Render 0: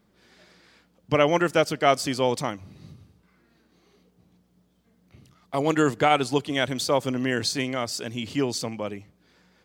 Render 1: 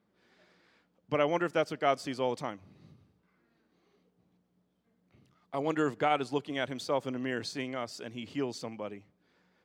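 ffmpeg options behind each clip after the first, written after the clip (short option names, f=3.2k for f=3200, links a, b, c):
-af "highpass=f=170:p=1,highshelf=f=4.4k:g=-11.5,volume=-7dB"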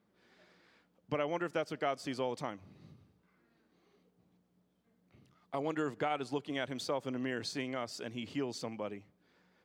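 -af "acompressor=threshold=-33dB:ratio=2.5"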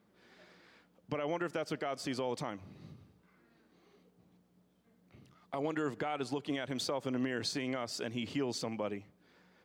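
-af "alimiter=level_in=5.5dB:limit=-24dB:level=0:latency=1:release=76,volume=-5.5dB,volume=4.5dB"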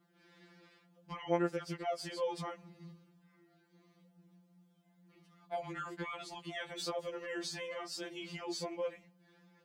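-af "afftfilt=real='re*2.83*eq(mod(b,8),0)':imag='im*2.83*eq(mod(b,8),0)':win_size=2048:overlap=0.75"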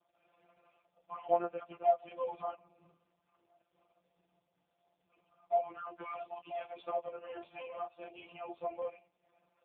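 -filter_complex "[0:a]asplit=3[a][b][c];[a]bandpass=f=730:t=q:w=8,volume=0dB[d];[b]bandpass=f=1.09k:t=q:w=8,volume=-6dB[e];[c]bandpass=f=2.44k:t=q:w=8,volume=-9dB[f];[d][e][f]amix=inputs=3:normalize=0,volume=12dB" -ar 8000 -c:a libopencore_amrnb -b:a 4750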